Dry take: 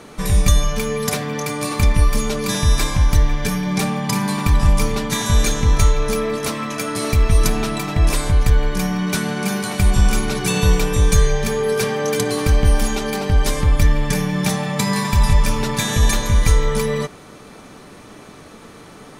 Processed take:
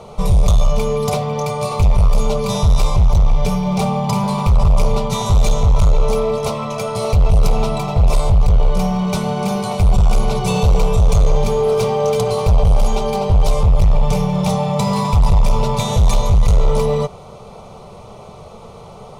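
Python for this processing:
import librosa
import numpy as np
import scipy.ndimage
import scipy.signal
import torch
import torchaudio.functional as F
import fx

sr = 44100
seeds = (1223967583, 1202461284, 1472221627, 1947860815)

y = fx.lowpass(x, sr, hz=1600.0, slope=6)
y = np.clip(10.0 ** (16.5 / 20.0) * y, -1.0, 1.0) / 10.0 ** (16.5 / 20.0)
y = fx.fixed_phaser(y, sr, hz=700.0, stages=4)
y = y * 10.0 ** (9.0 / 20.0)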